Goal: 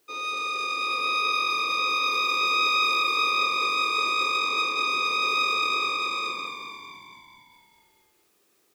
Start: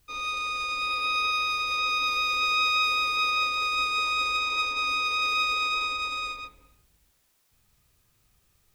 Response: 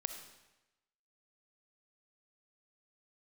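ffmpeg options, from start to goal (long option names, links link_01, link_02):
-filter_complex "[0:a]acrusher=bits=11:mix=0:aa=0.000001,highpass=frequency=370:width_type=q:width=4.1,asplit=2[link_01][link_02];[link_02]asplit=8[link_03][link_04][link_05][link_06][link_07][link_08][link_09][link_10];[link_03]adelay=222,afreqshift=-46,volume=-7dB[link_11];[link_04]adelay=444,afreqshift=-92,volume=-11.4dB[link_12];[link_05]adelay=666,afreqshift=-138,volume=-15.9dB[link_13];[link_06]adelay=888,afreqshift=-184,volume=-20.3dB[link_14];[link_07]adelay=1110,afreqshift=-230,volume=-24.7dB[link_15];[link_08]adelay=1332,afreqshift=-276,volume=-29.2dB[link_16];[link_09]adelay=1554,afreqshift=-322,volume=-33.6dB[link_17];[link_10]adelay=1776,afreqshift=-368,volume=-38.1dB[link_18];[link_11][link_12][link_13][link_14][link_15][link_16][link_17][link_18]amix=inputs=8:normalize=0[link_19];[link_01][link_19]amix=inputs=2:normalize=0"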